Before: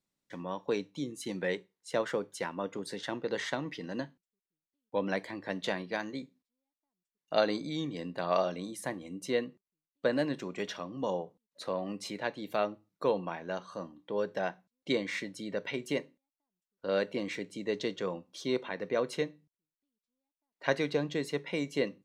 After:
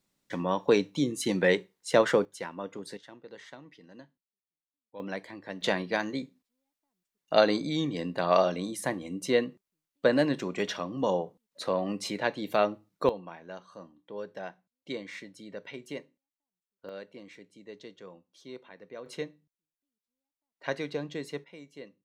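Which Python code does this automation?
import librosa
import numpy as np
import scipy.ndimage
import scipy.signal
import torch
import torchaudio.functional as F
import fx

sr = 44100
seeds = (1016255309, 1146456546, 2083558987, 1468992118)

y = fx.gain(x, sr, db=fx.steps((0.0, 9.0), (2.25, -2.0), (2.97, -13.5), (5.0, -3.5), (5.61, 5.5), (13.09, -6.5), (16.89, -13.0), (19.06, -3.5), (21.44, -15.0)))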